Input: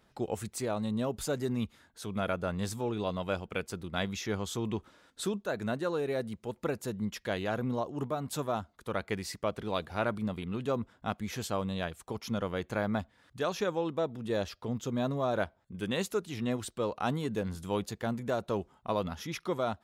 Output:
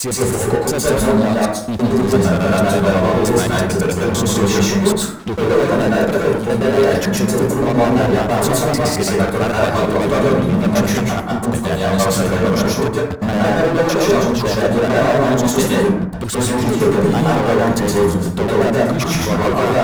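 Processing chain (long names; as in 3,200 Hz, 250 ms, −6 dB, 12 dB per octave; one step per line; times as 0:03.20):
slices reordered back to front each 112 ms, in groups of 6
dynamic equaliser 2,800 Hz, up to −4 dB, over −52 dBFS, Q 1
leveller curve on the samples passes 5
dense smooth reverb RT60 0.72 s, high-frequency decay 0.45×, pre-delay 105 ms, DRR −5.5 dB
level +1.5 dB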